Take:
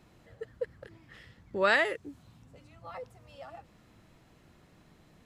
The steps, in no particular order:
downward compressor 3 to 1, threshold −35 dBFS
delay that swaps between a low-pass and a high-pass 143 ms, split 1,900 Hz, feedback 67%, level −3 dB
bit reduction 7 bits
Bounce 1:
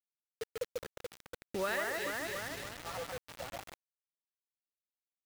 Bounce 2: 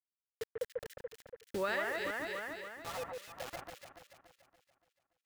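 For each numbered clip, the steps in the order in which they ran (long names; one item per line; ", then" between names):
delay that swaps between a low-pass and a high-pass, then downward compressor, then bit reduction
bit reduction, then delay that swaps between a low-pass and a high-pass, then downward compressor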